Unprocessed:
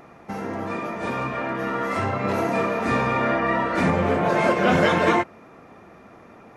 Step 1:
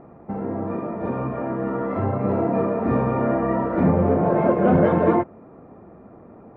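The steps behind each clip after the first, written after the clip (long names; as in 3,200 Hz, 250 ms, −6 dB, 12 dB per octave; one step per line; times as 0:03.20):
Bessel low-pass filter 590 Hz, order 2
level +4.5 dB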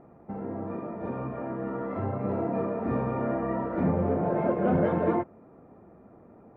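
notch filter 1,100 Hz, Q 21
level −7.5 dB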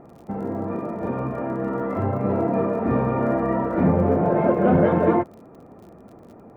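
surface crackle 46 per second −49 dBFS
level +7 dB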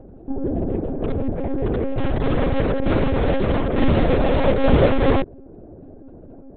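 adaptive Wiener filter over 41 samples
in parallel at −6 dB: wrap-around overflow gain 18.5 dB
on the sum: one-pitch LPC vocoder at 8 kHz 270 Hz
level +3 dB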